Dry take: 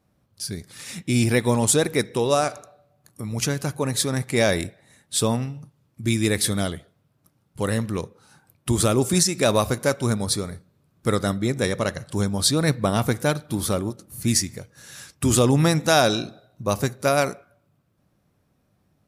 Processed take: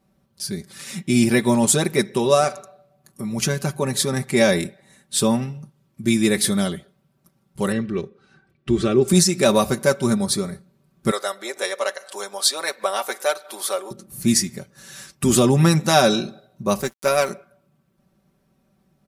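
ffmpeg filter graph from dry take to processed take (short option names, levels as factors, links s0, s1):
-filter_complex "[0:a]asettb=1/sr,asplit=3[s0][s1][s2];[s0]atrim=end=7.724[s3];[s1]atrim=start=7.72:end=9.08,asetpts=PTS-STARTPTS,afade=t=in:d=0.004:c=qsin,afade=t=out:st=1.356:d=0.004:c=qsin,lowpass=3000,equalizer=f=880:w=2:g=-11.5,aecho=1:1:2.6:0.35,atrim=end_sample=59976[s4];[s2]atrim=start=9.076[s5];[s3][s4]acrossfade=d=0.004:c1=hsin:c2=qsin[s6];[s6][s5]acrossfade=d=0.004:c1=qsin:c2=hsin,asettb=1/sr,asplit=3[s7][s8][s9];[s7]atrim=end=11.114[s10];[s8]atrim=start=11.11:end=13.91,asetpts=PTS-STARTPTS,afade=t=in:d=0.004:c=qsin,afade=t=out:st=2.796:d=0.004:c=qsin,highpass=f=510:w=0.5412,highpass=f=510:w=1.3066,acompressor=mode=upward:threshold=0.0224:ratio=2.5:attack=3.2:release=140:knee=2.83:detection=peak[s11];[s9]atrim=start=13.906[s12];[s10][s11]acrossfade=d=0.004:c1=hsin:c2=qsin[s13];[s13][s12]acrossfade=d=0.004:c1=qsin:c2=hsin,asettb=1/sr,asplit=3[s14][s15][s16];[s14]atrim=end=16.814[s17];[s15]atrim=start=16.81:end=17.3,asetpts=PTS-STARTPTS,afade=t=in:d=0.004:c=qsin,afade=t=out:st=0.486:d=0.004:c=qsin,highpass=f=330:p=1,aeval=exprs='sgn(val(0))*max(abs(val(0))-0.01,0)':c=same[s18];[s16]atrim=start=17.296[s19];[s17][s18]acrossfade=d=0.004:c1=hsin:c2=qsin[s20];[s20][s19]acrossfade=d=0.004:c1=qsin:c2=hsin,equalizer=f=260:t=o:w=0.83:g=3.5,aecho=1:1:5.2:0.73"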